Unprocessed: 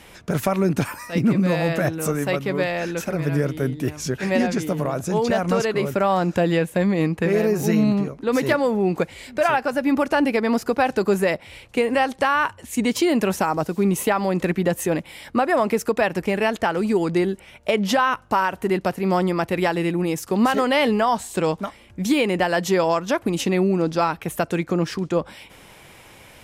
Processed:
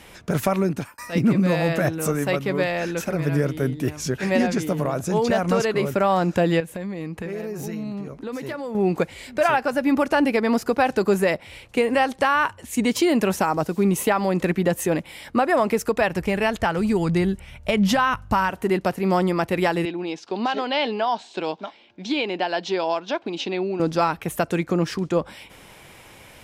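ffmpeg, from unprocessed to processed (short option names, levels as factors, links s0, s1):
-filter_complex "[0:a]asettb=1/sr,asplit=3[s0][s1][s2];[s0]atrim=end=6.604[s3];[s1]atrim=start=6.6:end=8.75,asetpts=PTS-STARTPTS,afade=t=in:d=0.004:c=qsin,afade=t=out:st=2.146:d=0.004:c=qsin,acompressor=threshold=0.0355:ratio=4:attack=3.2:release=140:knee=1:detection=peak[s4];[s2]atrim=start=8.746[s5];[s3][s4]acrossfade=d=0.004:c1=hsin:c2=qsin[s6];[s6][s5]acrossfade=d=0.004:c1=qsin:c2=hsin,asettb=1/sr,asplit=3[s7][s8][s9];[s7]atrim=end=15.544[s10];[s8]atrim=start=15.54:end=18.5,asetpts=PTS-STARTPTS,afade=t=in:d=0.004:c=qsin,afade=t=out:st=2.956:d=0.004:c=qsin,asubboost=boost=11:cutoff=130[s11];[s9]atrim=start=18.496[s12];[s10][s11]acrossfade=d=0.004:c1=hsin:c2=qsin[s13];[s13][s12]acrossfade=d=0.004:c1=qsin:c2=hsin,asettb=1/sr,asplit=3[s14][s15][s16];[s14]atrim=end=19.854[s17];[s15]atrim=start=19.85:end=23.8,asetpts=PTS-STARTPTS,afade=t=in:d=0.004:c=qsin,afade=t=out:st=3.946:d=0.004:c=qsin,highpass=370,equalizer=f=510:t=q:w=4:g=-7,equalizer=f=1200:t=q:w=4:g=-9,equalizer=f=1900:t=q:w=4:g=-8,equalizer=f=3800:t=q:w=4:g=3,lowpass=f=4800:w=0.5412,lowpass=f=4800:w=1.3066[s18];[s16]atrim=start=23.796[s19];[s17][s18]acrossfade=d=0.004:c1=hsin:c2=qsin[s20];[s20][s19]acrossfade=d=0.004:c1=qsin:c2=hsin,asplit=2[s21][s22];[s21]atrim=end=0.98,asetpts=PTS-STARTPTS,afade=t=out:st=0.56:d=0.42[s23];[s22]atrim=start=0.98,asetpts=PTS-STARTPTS,afade=t=in:d=0.004:c=hsin[s24];[s23][s24]concat=n=2:v=0:a=1"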